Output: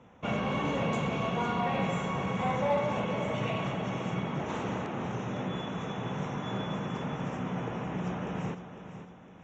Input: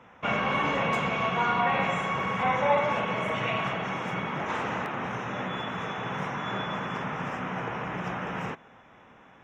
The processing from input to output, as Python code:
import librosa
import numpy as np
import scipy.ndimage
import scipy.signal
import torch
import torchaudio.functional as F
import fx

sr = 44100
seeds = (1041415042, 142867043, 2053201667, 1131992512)

p1 = scipy.signal.sosfilt(scipy.signal.ellip(4, 1.0, 40, 7400.0, 'lowpass', fs=sr, output='sos'), x)
p2 = fx.peak_eq(p1, sr, hz=1700.0, db=-13.0, octaves=2.5)
p3 = fx.notch(p2, sr, hz=5100.0, q=10.0)
p4 = np.clip(p3, -10.0 ** (-30.0 / 20.0), 10.0 ** (-30.0 / 20.0))
p5 = p3 + F.gain(torch.from_numpy(p4), -6.0).numpy()
y = fx.echo_feedback(p5, sr, ms=505, feedback_pct=39, wet_db=-11)